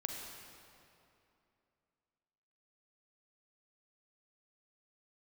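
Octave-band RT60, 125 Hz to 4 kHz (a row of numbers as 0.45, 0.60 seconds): 2.8, 2.9, 2.8, 2.7, 2.3, 2.0 seconds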